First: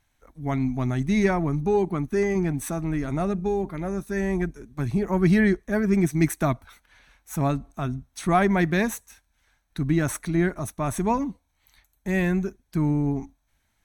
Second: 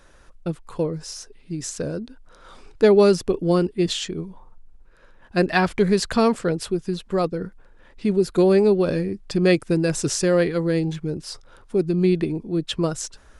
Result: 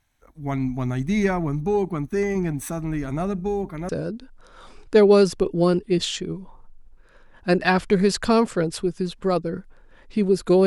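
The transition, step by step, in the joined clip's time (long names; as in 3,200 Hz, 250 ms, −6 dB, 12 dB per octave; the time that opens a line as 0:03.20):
first
0:03.89: continue with second from 0:01.77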